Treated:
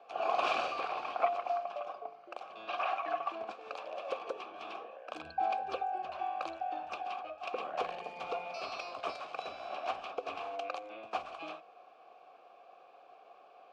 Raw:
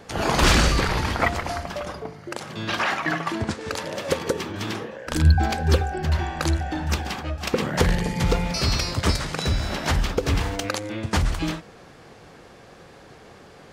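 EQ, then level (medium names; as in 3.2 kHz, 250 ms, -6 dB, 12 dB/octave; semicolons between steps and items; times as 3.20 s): vowel filter a; tone controls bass 0 dB, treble +8 dB; three-band isolator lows -15 dB, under 260 Hz, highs -13 dB, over 4.5 kHz; 0.0 dB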